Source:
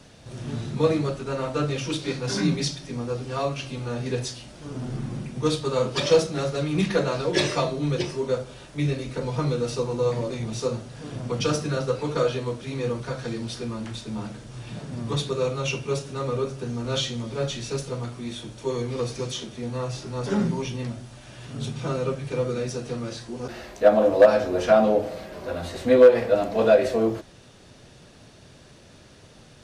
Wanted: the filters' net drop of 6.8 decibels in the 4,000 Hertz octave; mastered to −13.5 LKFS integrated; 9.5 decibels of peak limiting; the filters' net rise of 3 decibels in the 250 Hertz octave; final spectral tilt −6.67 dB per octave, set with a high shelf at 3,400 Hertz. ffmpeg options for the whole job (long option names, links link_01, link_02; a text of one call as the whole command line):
ffmpeg -i in.wav -af "equalizer=frequency=250:width_type=o:gain=4,highshelf=frequency=3400:gain=-8,equalizer=frequency=4000:width_type=o:gain=-3,volume=13.5dB,alimiter=limit=0dB:level=0:latency=1" out.wav